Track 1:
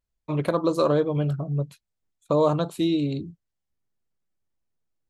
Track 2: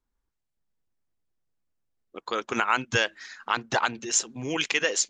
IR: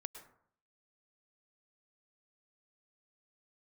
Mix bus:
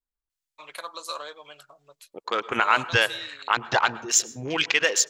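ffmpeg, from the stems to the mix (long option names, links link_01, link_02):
-filter_complex "[0:a]highpass=1100,highshelf=frequency=2400:gain=10,adelay=300,volume=-5.5dB,asplit=2[link_01][link_02];[link_02]volume=-23dB[link_03];[1:a]afwtdn=0.0112,volume=1dB,asplit=2[link_04][link_05];[link_05]volume=-3.5dB[link_06];[2:a]atrim=start_sample=2205[link_07];[link_03][link_06]amix=inputs=2:normalize=0[link_08];[link_08][link_07]afir=irnorm=-1:irlink=0[link_09];[link_01][link_04][link_09]amix=inputs=3:normalize=0,equalizer=frequency=240:width=1:gain=-6.5"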